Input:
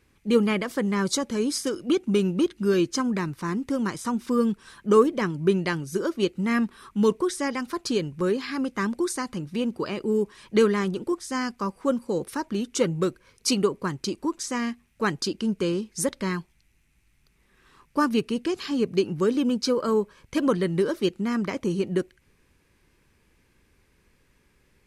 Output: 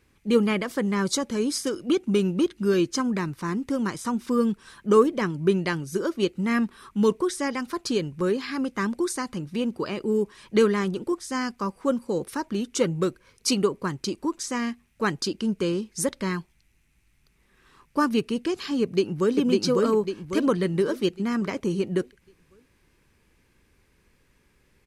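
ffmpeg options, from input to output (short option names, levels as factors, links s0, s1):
-filter_complex "[0:a]asplit=2[s0][s1];[s1]afade=t=in:st=18.82:d=0.01,afade=t=out:st=19.35:d=0.01,aecho=0:1:550|1100|1650|2200|2750|3300:0.891251|0.401063|0.180478|0.0812152|0.0365469|0.0164461[s2];[s0][s2]amix=inputs=2:normalize=0"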